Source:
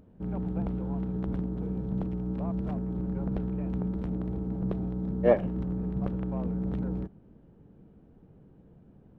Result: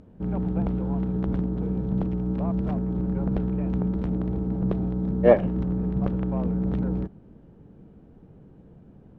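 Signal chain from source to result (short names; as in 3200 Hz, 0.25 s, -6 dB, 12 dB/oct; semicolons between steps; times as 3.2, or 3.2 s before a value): LPF 8000 Hz; gain +5.5 dB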